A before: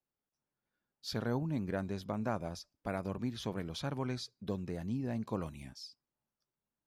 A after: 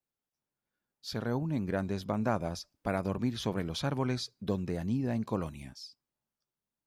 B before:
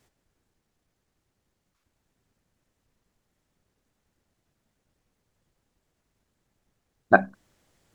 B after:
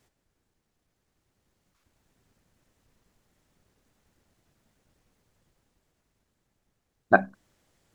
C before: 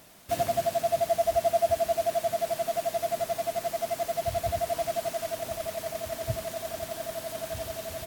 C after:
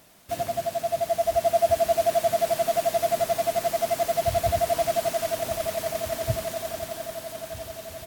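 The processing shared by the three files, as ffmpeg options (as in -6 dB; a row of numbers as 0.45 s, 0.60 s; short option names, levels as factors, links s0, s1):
-af "dynaudnorm=f=140:g=21:m=2.24,volume=0.841"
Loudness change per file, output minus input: +5.0 LU, -2.0 LU, +4.0 LU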